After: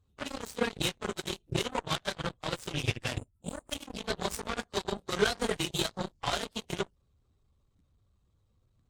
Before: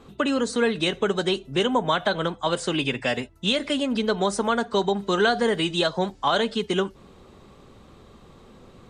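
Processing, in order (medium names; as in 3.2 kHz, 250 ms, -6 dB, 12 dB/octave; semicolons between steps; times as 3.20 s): phase randomisation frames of 50 ms; resonant low shelf 140 Hz +12.5 dB, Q 1.5; time-frequency box 3.17–3.71 s, 1.4–7 kHz -21 dB; tone controls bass +4 dB, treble +9 dB; Chebyshev shaper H 3 -31 dB, 7 -17 dB, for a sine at -6.5 dBFS; trim -7 dB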